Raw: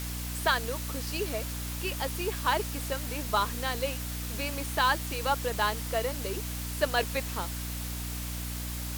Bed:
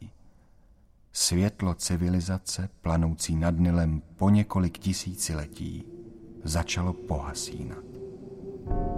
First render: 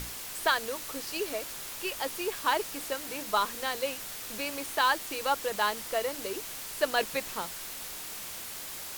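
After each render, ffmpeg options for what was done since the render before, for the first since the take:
-af "bandreject=f=60:t=h:w=6,bandreject=f=120:t=h:w=6,bandreject=f=180:t=h:w=6,bandreject=f=240:t=h:w=6,bandreject=f=300:t=h:w=6"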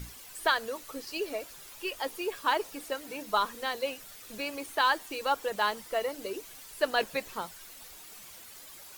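-af "afftdn=nr=11:nf=-41"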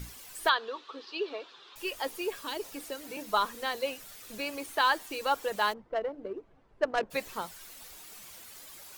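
-filter_complex "[0:a]asettb=1/sr,asplit=3[a][b][c];[a]atrim=end=0.494[d];[b]atrim=start=0.49:end=1.76,asetpts=PTS-STARTPTS,afade=t=in:d=0.004:c=qsin,afade=t=out:st=1.266:d=0.004:c=qsin,highpass=370,equalizer=f=390:t=q:w=4:g=5,equalizer=f=610:t=q:w=4:g=-8,equalizer=f=1.1k:t=q:w=4:g=5,equalizer=f=2.1k:t=q:w=4:g=-7,equalizer=f=3.6k:t=q:w=4:g=7,lowpass=f=4.1k:w=0.5412,lowpass=f=4.1k:w=1.3066[e];[c]atrim=start=1.756[f];[d][e]acrossfade=d=0.004:c1=hsin:c2=qsin[g];[g][f]acrossfade=d=0.004:c1=qsin:c2=hsin,asettb=1/sr,asplit=3[h][i][j];[h]atrim=end=2.334[k];[i]atrim=start=2.33:end=3.17,asetpts=PTS-STARTPTS,afade=t=in:d=0.004:c=qsin,afade=t=out:st=0.836:d=0.004:c=qsin,acrossover=split=450|3000[l][m][n];[m]acompressor=threshold=-40dB:ratio=6:attack=3.2:release=140:knee=2.83:detection=peak[o];[l][o][n]amix=inputs=3:normalize=0[p];[j]atrim=start=3.166[q];[k][p]acrossfade=d=0.004:c1=hsin:c2=qsin[r];[r][q]acrossfade=d=0.004:c1=qsin:c2=hsin,asplit=3[s][t][u];[s]afade=t=out:st=5.72:d=0.02[v];[t]adynamicsmooth=sensitivity=1:basefreq=690,afade=t=in:st=5.72:d=0.02,afade=t=out:st=7.1:d=0.02[w];[u]afade=t=in:st=7.1:d=0.02[x];[v][w][x]amix=inputs=3:normalize=0"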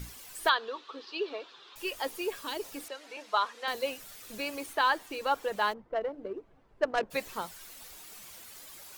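-filter_complex "[0:a]asettb=1/sr,asplit=3[a][b][c];[a]atrim=end=2.884[d];[b]atrim=start=2.88:end=3.68,asetpts=PTS-STARTPTS,afade=t=in:d=0.004:c=qsin,afade=t=out:st=0.796:d=0.004:c=qsin,highpass=560,lowpass=5k[e];[c]atrim=start=3.676[f];[d][e]acrossfade=d=0.004:c1=hsin:c2=qsin[g];[g][f]acrossfade=d=0.004:c1=qsin:c2=hsin,asettb=1/sr,asplit=3[h][i][j];[h]atrim=end=4.734[k];[i]atrim=start=4.73:end=6.01,asetpts=PTS-STARTPTS,afade=t=in:d=0.004:c=qsin,afade=t=out:st=1.276:d=0.004:c=qsin,highshelf=f=4.2k:g=-7[l];[j]atrim=start=6.006[m];[k][l]acrossfade=d=0.004:c1=hsin:c2=qsin[n];[n][m]acrossfade=d=0.004:c1=qsin:c2=hsin"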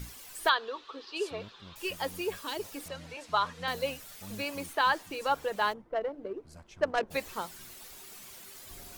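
-filter_complex "[1:a]volume=-24.5dB[a];[0:a][a]amix=inputs=2:normalize=0"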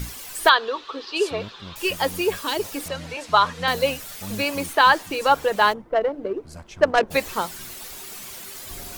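-af "volume=11dB,alimiter=limit=-2dB:level=0:latency=1"

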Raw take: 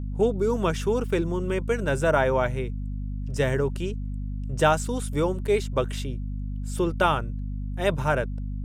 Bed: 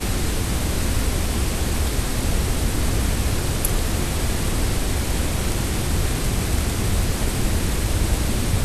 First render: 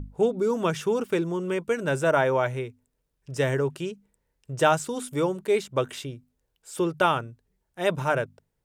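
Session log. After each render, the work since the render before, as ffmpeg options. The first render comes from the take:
-af "bandreject=f=50:t=h:w=6,bandreject=f=100:t=h:w=6,bandreject=f=150:t=h:w=6,bandreject=f=200:t=h:w=6,bandreject=f=250:t=h:w=6"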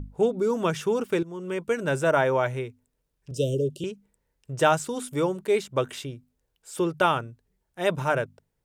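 -filter_complex "[0:a]asettb=1/sr,asplit=3[a][b][c];[a]atrim=end=3.314[d];[b]atrim=start=3.31:end=3.84,asetpts=PTS-STARTPTS,afade=t=in:d=0.004:c=qsin,afade=t=out:st=0.526:d=0.004:c=qsin,asuperstop=centerf=1300:order=20:qfactor=0.59[e];[c]atrim=start=3.836[f];[d][e]acrossfade=d=0.004:c1=hsin:c2=qsin[g];[g][f]acrossfade=d=0.004:c1=qsin:c2=hsin,asplit=2[h][i];[h]atrim=end=1.23,asetpts=PTS-STARTPTS,afade=t=out:st=1.226:d=0.004:c=hsin:silence=0.188365[j];[i]atrim=start=1.23,asetpts=PTS-STARTPTS,afade=t=in:d=0.45:silence=0.188365[k];[j][k]concat=n=2:v=0:a=1"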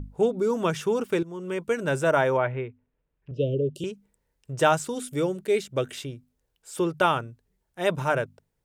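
-filter_complex "[0:a]asettb=1/sr,asplit=3[a][b][c];[a]atrim=end=2.374[d];[b]atrim=start=2.37:end=3.75,asetpts=PTS-STARTPTS,afade=t=in:d=0.004:c=qsin,afade=t=out:st=1.376:d=0.004:c=qsin,lowpass=f=2.8k:w=0.5412,lowpass=f=2.8k:w=1.3066[e];[c]atrim=start=3.746[f];[d][e]acrossfade=d=0.004:c1=hsin:c2=qsin[g];[g][f]acrossfade=d=0.004:c1=qsin:c2=hsin,asettb=1/sr,asplit=3[h][i][j];[h]atrim=end=4.944[k];[i]atrim=start=4.94:end=5.98,asetpts=PTS-STARTPTS,afade=t=in:d=0.004:c=qsin,afade=t=out:st=1.036:d=0.004:c=qsin,equalizer=f=1k:t=o:w=0.58:g=-10[l];[j]atrim=start=5.976[m];[k][l]acrossfade=d=0.004:c1=hsin:c2=qsin[n];[n][m]acrossfade=d=0.004:c1=qsin:c2=hsin"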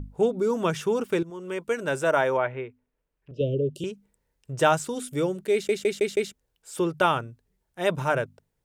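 -filter_complex "[0:a]asettb=1/sr,asplit=3[a][b][c];[a]atrim=end=1.304[d];[b]atrim=start=1.3:end=3.41,asetpts=PTS-STARTPTS,afade=t=in:d=0.004:c=qsin,afade=t=out:st=2.106:d=0.004:c=qsin,equalizer=f=100:t=o:w=2.2:g=-8[e];[c]atrim=start=3.406[f];[d][e]acrossfade=d=0.004:c1=hsin:c2=qsin[g];[g][f]acrossfade=d=0.004:c1=qsin:c2=hsin,asplit=6[h][i][j][k][l][m];[h]atrim=end=5.692[n];[i]atrim=start=5.528:end=5.692[o];[j]atrim=start=5.528:end=5.692[p];[k]atrim=start=5.528:end=5.692[q];[l]atrim=start=5.528:end=5.692[r];[m]atrim=start=6.328[s];[n][o]acrossfade=d=0.004:c1=hsin:c2=hsin[t];[t][p]acrossfade=d=0.004:c1=hsin:c2=hsin[u];[u][q]acrossfade=d=0.004:c1=hsin:c2=hsin[v];[v][r]acrossfade=d=0.004:c1=hsin:c2=hsin[w];[w][s]acrossfade=d=0.004:c1=hsin:c2=hsin"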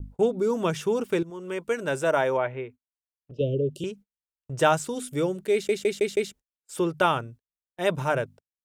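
-af "agate=range=-36dB:threshold=-44dB:ratio=16:detection=peak,adynamicequalizer=threshold=0.01:dfrequency=1400:dqfactor=1.4:tfrequency=1400:tqfactor=1.4:attack=5:release=100:ratio=0.375:range=2:mode=cutabove:tftype=bell"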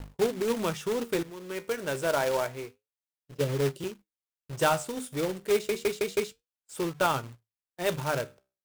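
-af "flanger=delay=6.9:depth=8.7:regen=73:speed=0.29:shape=sinusoidal,acrusher=bits=2:mode=log:mix=0:aa=0.000001"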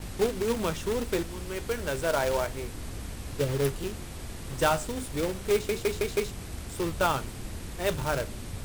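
-filter_complex "[1:a]volume=-17dB[a];[0:a][a]amix=inputs=2:normalize=0"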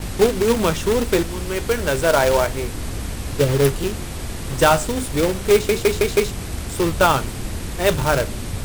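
-af "volume=10.5dB,alimiter=limit=-1dB:level=0:latency=1"

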